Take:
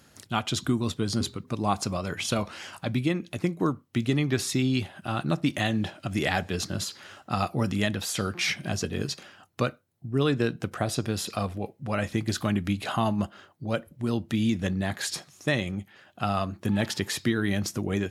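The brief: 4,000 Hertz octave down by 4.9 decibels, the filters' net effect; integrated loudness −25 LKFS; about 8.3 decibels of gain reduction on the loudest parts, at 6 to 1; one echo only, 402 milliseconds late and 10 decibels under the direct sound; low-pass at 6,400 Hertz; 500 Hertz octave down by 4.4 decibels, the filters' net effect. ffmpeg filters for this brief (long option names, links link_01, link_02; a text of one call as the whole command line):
ffmpeg -i in.wav -af "lowpass=6400,equalizer=frequency=500:width_type=o:gain=-6,equalizer=frequency=4000:width_type=o:gain=-5.5,acompressor=threshold=-31dB:ratio=6,aecho=1:1:402:0.316,volume=11.5dB" out.wav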